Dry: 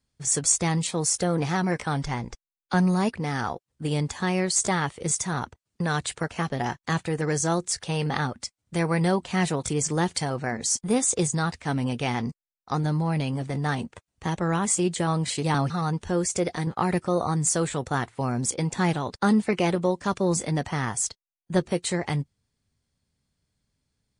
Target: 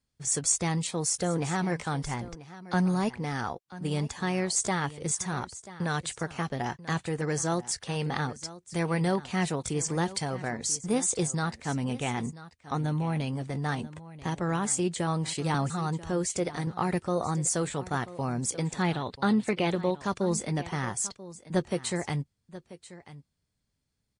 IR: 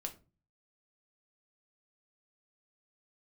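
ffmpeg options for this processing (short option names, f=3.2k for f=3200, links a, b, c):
-filter_complex "[0:a]asettb=1/sr,asplit=3[a][b][c];[a]atrim=end=11.904[d];[b]atrim=start=11.9:end=13.21,asetpts=PTS-STARTPTS,afade=t=in:d=0.004:c=qsin,afade=t=out:st=1.306:d=0.004:c=qsin,asuperstop=centerf=4900:order=4:qfactor=4.1[e];[c]atrim=start=13.206[f];[d][e]acrossfade=d=0.004:c1=hsin:c2=qsin[g];[g][f]acrossfade=d=0.004:c1=qsin:c2=hsin,asettb=1/sr,asplit=3[h][i][j];[h]atrim=end=18.824[k];[i]atrim=start=18.82:end=19.95,asetpts=PTS-STARTPTS,afade=t=in:d=0.004:c=qsin,afade=t=out:st=1.126:d=0.004:c=qsin,highshelf=f=4.8k:t=q:w=3:g=-6[l];[j]atrim=start=19.946[m];[k][l]acrossfade=d=0.004:c1=hsin:c2=qsin[n];[n][m]acrossfade=d=0.004:c1=qsin:c2=hsin,asplit=2[o][p];[p]aecho=0:1:987:0.15[q];[o][q]amix=inputs=2:normalize=0,volume=-4dB"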